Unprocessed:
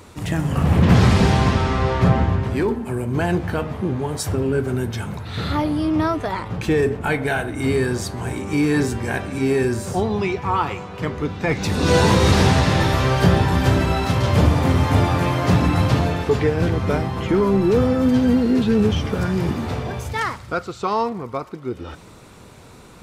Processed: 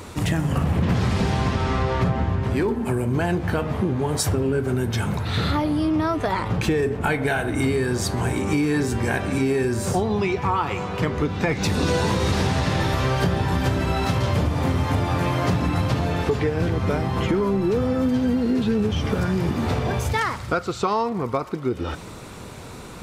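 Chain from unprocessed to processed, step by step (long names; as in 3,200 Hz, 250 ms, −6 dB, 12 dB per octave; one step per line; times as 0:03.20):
downward compressor, threshold −25 dBFS, peak gain reduction 15 dB
level +6 dB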